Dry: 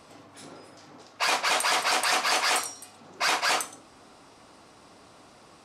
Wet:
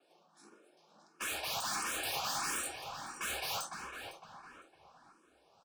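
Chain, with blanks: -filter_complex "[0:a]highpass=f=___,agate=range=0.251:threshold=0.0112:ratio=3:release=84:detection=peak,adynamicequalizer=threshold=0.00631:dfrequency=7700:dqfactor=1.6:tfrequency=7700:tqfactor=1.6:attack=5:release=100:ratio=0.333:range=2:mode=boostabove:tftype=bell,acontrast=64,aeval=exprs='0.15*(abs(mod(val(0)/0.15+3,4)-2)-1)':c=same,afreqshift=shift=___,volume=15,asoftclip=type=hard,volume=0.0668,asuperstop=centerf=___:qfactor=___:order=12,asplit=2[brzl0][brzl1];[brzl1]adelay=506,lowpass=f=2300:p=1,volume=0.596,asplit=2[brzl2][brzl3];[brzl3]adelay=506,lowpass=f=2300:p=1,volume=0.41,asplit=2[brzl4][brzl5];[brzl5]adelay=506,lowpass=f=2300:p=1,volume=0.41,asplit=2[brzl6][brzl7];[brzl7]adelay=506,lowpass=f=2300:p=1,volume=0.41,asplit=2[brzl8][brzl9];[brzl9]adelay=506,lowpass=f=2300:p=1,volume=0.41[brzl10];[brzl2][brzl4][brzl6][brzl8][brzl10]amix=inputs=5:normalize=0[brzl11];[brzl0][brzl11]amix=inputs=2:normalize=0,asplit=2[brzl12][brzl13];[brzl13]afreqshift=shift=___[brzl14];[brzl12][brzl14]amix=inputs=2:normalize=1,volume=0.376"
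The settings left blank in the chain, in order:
110, 62, 2000, 7.5, 1.5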